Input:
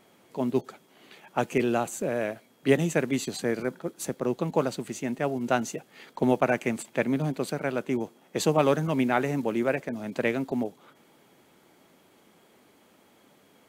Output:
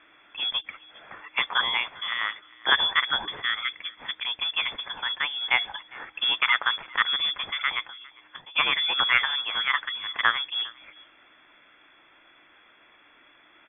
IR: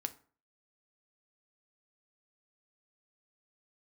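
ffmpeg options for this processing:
-filter_complex "[0:a]firequalizer=gain_entry='entry(190,0);entry(610,-23);entry(890,-1);entry(1600,8)':delay=0.05:min_phase=1,asplit=3[link_01][link_02][link_03];[link_01]afade=type=out:start_time=7.87:duration=0.02[link_04];[link_02]acompressor=threshold=-42dB:ratio=16,afade=type=in:start_time=7.87:duration=0.02,afade=type=out:start_time=8.55:duration=0.02[link_05];[link_03]afade=type=in:start_time=8.55:duration=0.02[link_06];[link_04][link_05][link_06]amix=inputs=3:normalize=0,aecho=1:1:404:0.0668,lowpass=frequency=3100:width_type=q:width=0.5098,lowpass=frequency=3100:width_type=q:width=0.6013,lowpass=frequency=3100:width_type=q:width=0.9,lowpass=frequency=3100:width_type=q:width=2.563,afreqshift=-3600,volume=2.5dB"

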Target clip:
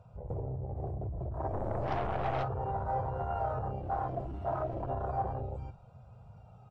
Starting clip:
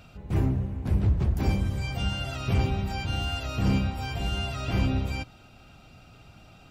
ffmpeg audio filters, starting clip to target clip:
ffmpeg -i in.wav -filter_complex "[0:a]aecho=1:1:474:0.473,alimiter=level_in=1dB:limit=-24dB:level=0:latency=1:release=32,volume=-1dB,acrossover=split=2800[link_01][link_02];[link_02]acompressor=threshold=-50dB:ratio=4:attack=1:release=60[link_03];[link_01][link_03]amix=inputs=2:normalize=0,equalizer=frequency=125:width_type=o:width=1:gain=9,equalizer=frequency=250:width_type=o:width=1:gain=-11,equalizer=frequency=500:width_type=o:width=1:gain=6,equalizer=frequency=1000:width_type=o:width=1:gain=9,equalizer=frequency=2000:width_type=o:width=1:gain=-7,equalizer=frequency=4000:width_type=o:width=1:gain=-5,asettb=1/sr,asplit=3[link_04][link_05][link_06];[link_04]atrim=end=3.794[link_07];[link_05]atrim=start=3.79:end=4.9,asetpts=PTS-STARTPTS,afade=type=in:duration=0.004:curve=qsin,afade=type=out:start_time=1.106:duration=0.004:curve=qsin,volume=31.5dB,asoftclip=hard,volume=-31.5dB[link_08];[link_06]atrim=start=4.896[link_09];[link_07][link_08]acrossfade=duration=0.004:curve1=hsin:curve2=qsin[link_10];[link_10][link_09]acrossfade=duration=0.004:curve1=qsin:curve2=hsin,afwtdn=0.0224,flanger=delay=2:depth=1.1:regen=50:speed=0.33:shape=sinusoidal,acompressor=threshold=-34dB:ratio=6,asplit=3[link_11][link_12][link_13];[link_11]afade=type=out:start_time=1.52:duration=0.02[link_14];[link_12]aeval=exprs='0.0335*(cos(1*acos(clip(val(0)/0.0335,-1,1)))-cos(1*PI/2))+0.00944*(cos(8*acos(clip(val(0)/0.0335,-1,1)))-cos(8*PI/2))':channel_layout=same,afade=type=in:start_time=1.52:duration=0.02,afade=type=out:start_time=2.42:duration=0.02[link_15];[link_13]afade=type=in:start_time=2.42:duration=0.02[link_16];[link_14][link_15][link_16]amix=inputs=3:normalize=0,asoftclip=type=tanh:threshold=-29dB,equalizer=frequency=690:width=0.84:gain=13" -ar 22050 -c:a aac -b:a 32k out.aac

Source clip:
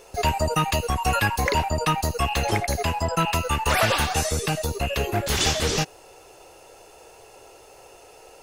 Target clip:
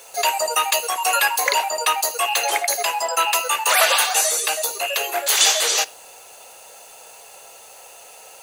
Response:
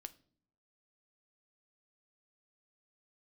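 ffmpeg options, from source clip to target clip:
-filter_complex "[0:a]highpass=frequency=540:width=0.5412,highpass=frequency=540:width=1.3066,highshelf=frequency=4000:gain=10,bandreject=frequency=5300:width=8.1,acrusher=bits=7:mix=0:aa=0.5,asplit=2[link_01][link_02];[1:a]atrim=start_sample=2205[link_03];[link_02][link_03]afir=irnorm=-1:irlink=0,volume=4dB[link_04];[link_01][link_04]amix=inputs=2:normalize=0,volume=-2dB"

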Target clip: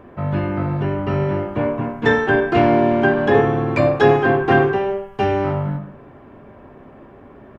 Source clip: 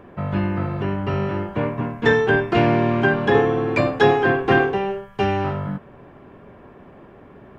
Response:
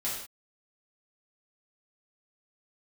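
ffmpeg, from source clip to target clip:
-filter_complex "[0:a]asplit=2[link_01][link_02];[link_02]adelay=140,highpass=300,lowpass=3400,asoftclip=type=hard:threshold=-11.5dB,volume=-27dB[link_03];[link_01][link_03]amix=inputs=2:normalize=0,asplit=2[link_04][link_05];[1:a]atrim=start_sample=2205,lowpass=2100[link_06];[link_05][link_06]afir=irnorm=-1:irlink=0,volume=-7.5dB[link_07];[link_04][link_07]amix=inputs=2:normalize=0,volume=-1dB"

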